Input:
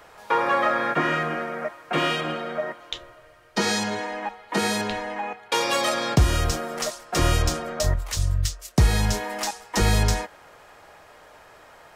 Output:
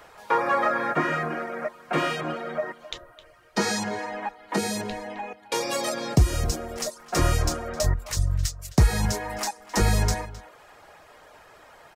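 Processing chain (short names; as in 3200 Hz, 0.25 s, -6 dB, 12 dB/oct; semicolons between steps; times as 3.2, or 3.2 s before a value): 4.56–6.96 bell 1300 Hz -7 dB 1.4 oct; reverb removal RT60 0.55 s; outdoor echo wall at 45 m, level -17 dB; dynamic EQ 3200 Hz, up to -7 dB, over -46 dBFS, Q 2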